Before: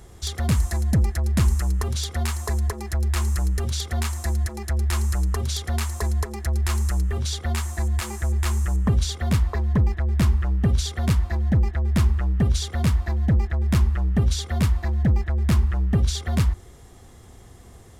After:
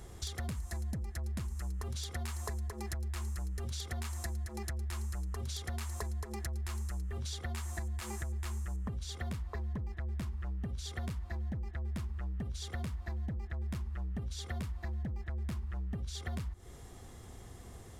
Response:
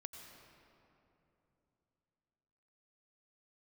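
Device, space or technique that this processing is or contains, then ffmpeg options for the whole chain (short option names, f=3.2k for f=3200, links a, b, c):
serial compression, peaks first: -af "acompressor=threshold=-27dB:ratio=6,acompressor=threshold=-34dB:ratio=2.5,volume=-3.5dB"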